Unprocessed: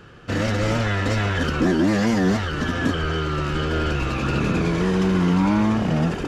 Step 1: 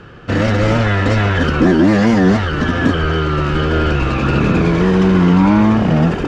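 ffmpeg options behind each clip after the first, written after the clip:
-af "aemphasis=mode=reproduction:type=50fm,volume=7.5dB"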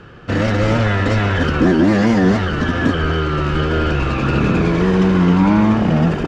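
-af "aecho=1:1:188:0.211,volume=-2dB"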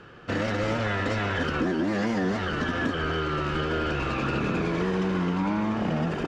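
-af "lowshelf=f=170:g=-9,acompressor=threshold=-17dB:ratio=6,volume=-5.5dB"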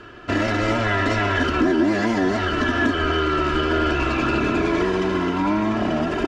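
-af "aecho=1:1:3:0.68,volume=5dB"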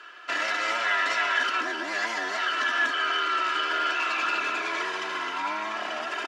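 -af "highpass=1.1k"

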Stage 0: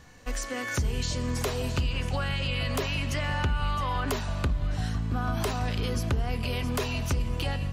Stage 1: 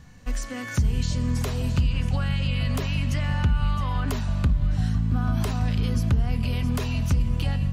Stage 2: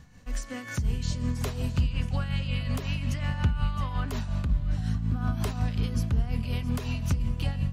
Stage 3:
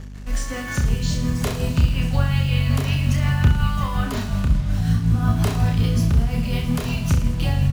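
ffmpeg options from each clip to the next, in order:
-af "lowshelf=f=270:t=q:w=1.5:g=7.5,volume=-2dB"
-af "tremolo=f=5.5:d=0.54,volume=-2dB"
-af "acrusher=bits=7:mix=0:aa=0.5,aecho=1:1:30|66|109.2|161|223.2:0.631|0.398|0.251|0.158|0.1,aeval=exprs='val(0)+0.00891*(sin(2*PI*50*n/s)+sin(2*PI*2*50*n/s)/2+sin(2*PI*3*50*n/s)/3+sin(2*PI*4*50*n/s)/4+sin(2*PI*5*50*n/s)/5)':c=same,volume=6.5dB"

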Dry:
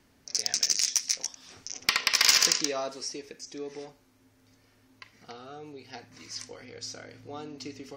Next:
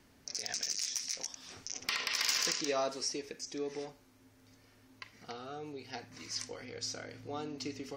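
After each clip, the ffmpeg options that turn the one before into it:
-af "alimiter=limit=-23dB:level=0:latency=1:release=50"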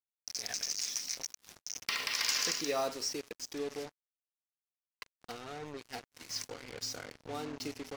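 -af "acrusher=bits=6:mix=0:aa=0.5"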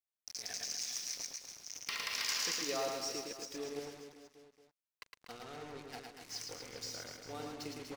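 -af "aecho=1:1:110|242|400.4|590.5|818.6:0.631|0.398|0.251|0.158|0.1,volume=-5.5dB"

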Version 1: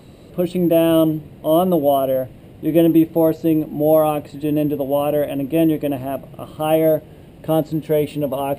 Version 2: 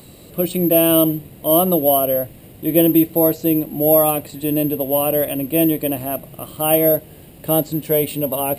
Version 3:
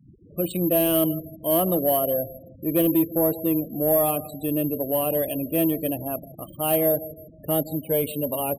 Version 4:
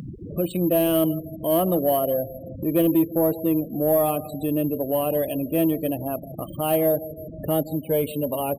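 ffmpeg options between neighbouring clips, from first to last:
-af "aemphasis=mode=production:type=75fm"
-af "aecho=1:1:160|320|480:0.133|0.0493|0.0183,afftfilt=real='re*gte(hypot(re,im),0.0316)':imag='im*gte(hypot(re,im),0.0316)':win_size=1024:overlap=0.75,asoftclip=type=tanh:threshold=-7.5dB,volume=-5dB"
-af "highshelf=f=3.5k:g=-6.5,acompressor=mode=upward:threshold=-25dB:ratio=2.5,volume=1.5dB"

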